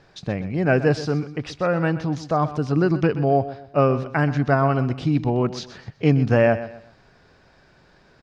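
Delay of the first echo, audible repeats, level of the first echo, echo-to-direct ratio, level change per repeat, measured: 0.126 s, 3, -14.0 dB, -13.5 dB, -10.0 dB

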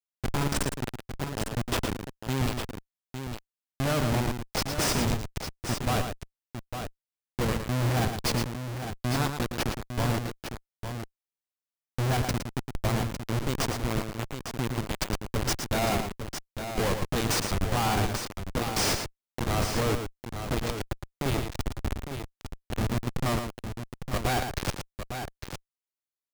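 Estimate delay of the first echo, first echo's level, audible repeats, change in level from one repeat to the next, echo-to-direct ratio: 0.113 s, -7.0 dB, 2, no steady repeat, -4.5 dB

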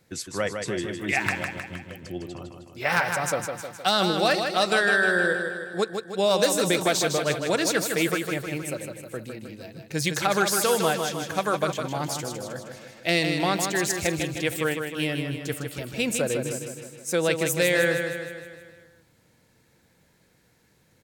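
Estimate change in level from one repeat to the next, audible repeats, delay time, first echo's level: -5.0 dB, 6, 0.156 s, -6.0 dB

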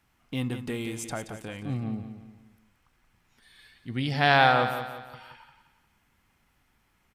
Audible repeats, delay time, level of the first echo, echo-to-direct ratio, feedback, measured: 4, 0.176 s, -9.5 dB, -8.5 dB, 41%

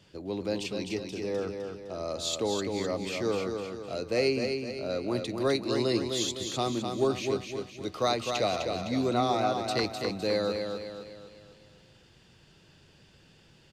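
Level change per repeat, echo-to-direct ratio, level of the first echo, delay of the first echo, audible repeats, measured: -6.5 dB, -4.5 dB, -5.5 dB, 0.255 s, 5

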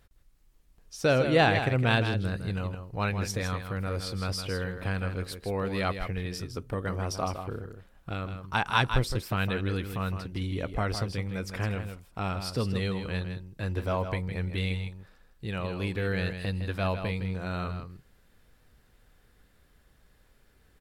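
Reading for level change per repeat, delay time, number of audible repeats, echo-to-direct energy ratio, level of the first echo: no steady repeat, 0.16 s, 1, -8.5 dB, -8.5 dB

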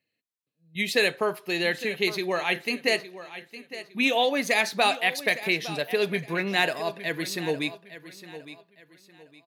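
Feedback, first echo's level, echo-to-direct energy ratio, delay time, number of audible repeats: 31%, -14.5 dB, -14.0 dB, 0.86 s, 3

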